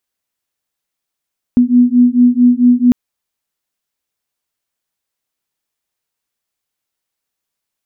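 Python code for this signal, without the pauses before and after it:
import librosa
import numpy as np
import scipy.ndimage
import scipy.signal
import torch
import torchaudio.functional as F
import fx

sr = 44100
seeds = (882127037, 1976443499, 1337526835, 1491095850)

y = fx.two_tone_beats(sr, length_s=1.35, hz=243.0, beat_hz=4.5, level_db=-9.5)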